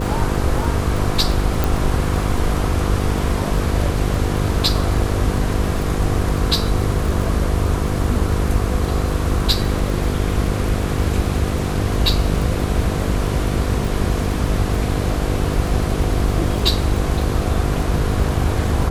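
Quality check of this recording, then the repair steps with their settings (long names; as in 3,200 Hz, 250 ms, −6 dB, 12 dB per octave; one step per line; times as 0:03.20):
mains buzz 50 Hz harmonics 10 −23 dBFS
surface crackle 25 per second −23 dBFS
0:01.64: click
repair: click removal
hum removal 50 Hz, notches 10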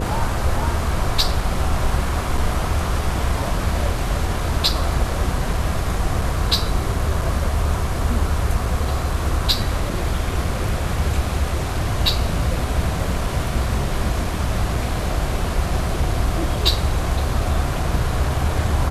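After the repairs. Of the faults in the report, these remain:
none of them is left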